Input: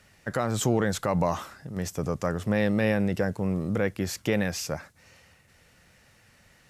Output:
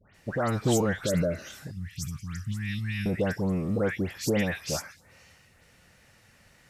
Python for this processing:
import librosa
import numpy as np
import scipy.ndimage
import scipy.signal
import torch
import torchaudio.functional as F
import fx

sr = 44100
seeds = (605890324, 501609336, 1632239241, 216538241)

y = fx.spec_repair(x, sr, seeds[0], start_s=1.0, length_s=0.53, low_hz=650.0, high_hz=1700.0, source='both')
y = fx.dispersion(y, sr, late='highs', ms=148.0, hz=1900.0)
y = fx.cheby1_bandstop(y, sr, low_hz=120.0, high_hz=2600.0, order=2, at=(1.71, 3.06))